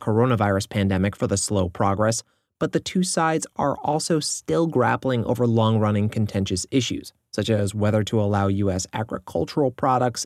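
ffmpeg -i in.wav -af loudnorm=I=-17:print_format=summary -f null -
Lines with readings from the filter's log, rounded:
Input Integrated:    -22.8 LUFS
Input True Peak:      -6.1 dBTP
Input LRA:             1.6 LU
Input Threshold:     -32.8 LUFS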